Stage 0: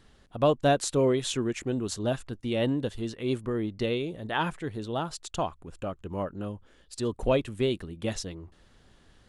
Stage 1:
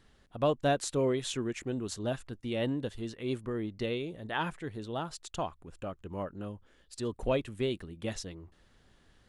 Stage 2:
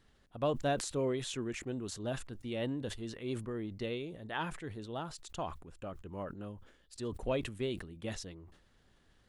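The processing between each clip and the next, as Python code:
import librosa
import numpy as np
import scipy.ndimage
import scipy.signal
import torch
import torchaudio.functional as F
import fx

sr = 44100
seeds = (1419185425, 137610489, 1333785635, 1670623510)

y1 = fx.peak_eq(x, sr, hz=1900.0, db=2.0, octaves=0.77)
y1 = y1 * librosa.db_to_amplitude(-5.0)
y2 = fx.sustainer(y1, sr, db_per_s=88.0)
y2 = y2 * librosa.db_to_amplitude(-4.5)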